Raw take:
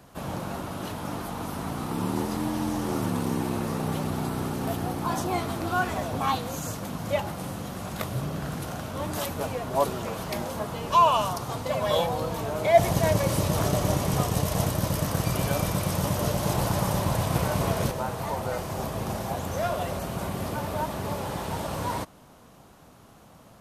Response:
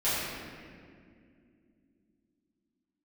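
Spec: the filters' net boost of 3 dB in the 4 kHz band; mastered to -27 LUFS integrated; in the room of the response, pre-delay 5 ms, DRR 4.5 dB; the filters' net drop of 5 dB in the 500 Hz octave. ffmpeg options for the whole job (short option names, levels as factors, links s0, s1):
-filter_complex "[0:a]equalizer=f=500:t=o:g=-7,equalizer=f=4000:t=o:g=4,asplit=2[s0][s1];[1:a]atrim=start_sample=2205,adelay=5[s2];[s1][s2]afir=irnorm=-1:irlink=0,volume=0.158[s3];[s0][s3]amix=inputs=2:normalize=0,volume=1.06"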